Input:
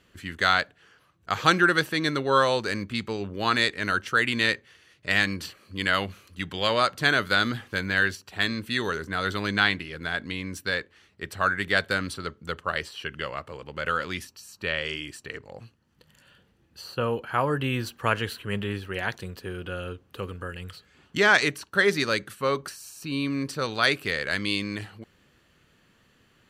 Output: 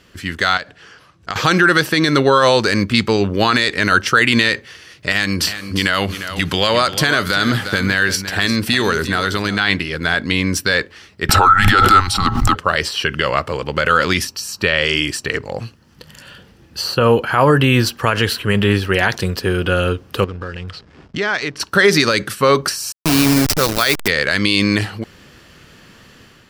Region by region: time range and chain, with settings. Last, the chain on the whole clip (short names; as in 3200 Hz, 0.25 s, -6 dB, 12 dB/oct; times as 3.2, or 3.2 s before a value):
0.57–1.36 LPF 9600 Hz + compressor, threshold -34 dBFS
5.12–9.59 bell 11000 Hz +4 dB 1.2 oct + compressor 3:1, threshold -30 dBFS + echo 0.351 s -12 dB
11.29–12.55 small resonant body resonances 1000/1500 Hz, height 18 dB, ringing for 85 ms + frequency shift -190 Hz + backwards sustainer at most 54 dB/s
20.24–21.6 compressor 2:1, threshold -47 dBFS + backlash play -52 dBFS + air absorption 89 m
22.92–24.08 level-crossing sampler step -28.5 dBFS + high shelf 7200 Hz +10 dB
whole clip: AGC gain up to 6.5 dB; bell 5200 Hz +7.5 dB 0.28 oct; maximiser +12 dB; gain -1 dB